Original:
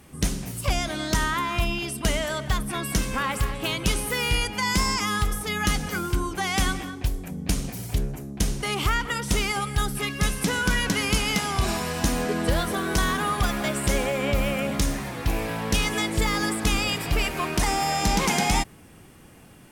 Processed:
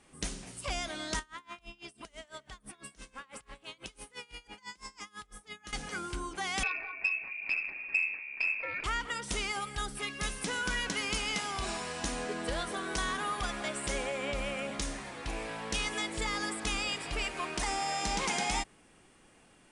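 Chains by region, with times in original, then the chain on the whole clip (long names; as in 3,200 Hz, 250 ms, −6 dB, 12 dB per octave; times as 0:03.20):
0:01.19–0:05.73: downward compressor 10 to 1, threshold −28 dBFS + tremolo with a sine in dB 6 Hz, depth 25 dB
0:06.63–0:08.84: voice inversion scrambler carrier 2,600 Hz + delay with a low-pass on its return 196 ms, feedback 52%, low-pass 1,000 Hz, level −7 dB + saturating transformer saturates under 1,100 Hz
whole clip: Chebyshev low-pass filter 10,000 Hz, order 6; parametric band 100 Hz −11.5 dB 2.3 octaves; level −7 dB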